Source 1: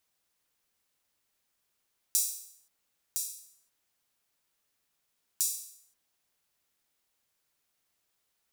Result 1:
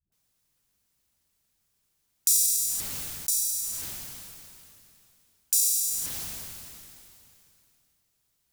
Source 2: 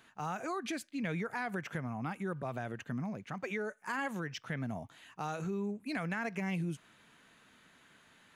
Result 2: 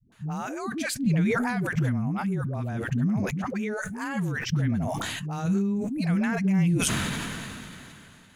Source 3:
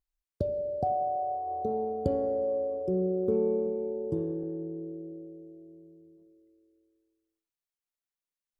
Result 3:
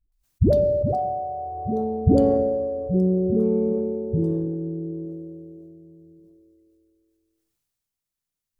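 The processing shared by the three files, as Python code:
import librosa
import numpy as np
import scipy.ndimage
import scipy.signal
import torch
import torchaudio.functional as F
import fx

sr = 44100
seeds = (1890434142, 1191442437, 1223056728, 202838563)

p1 = fx.bass_treble(x, sr, bass_db=13, treble_db=5)
p2 = fx.level_steps(p1, sr, step_db=9)
p3 = p1 + (p2 * librosa.db_to_amplitude(0.0))
p4 = fx.dynamic_eq(p3, sr, hz=230.0, q=1.2, threshold_db=-31.0, ratio=4.0, max_db=3)
p5 = fx.dispersion(p4, sr, late='highs', ms=122.0, hz=330.0)
p6 = fx.sustainer(p5, sr, db_per_s=21.0)
y = p6 * librosa.db_to_amplitude(-3.5)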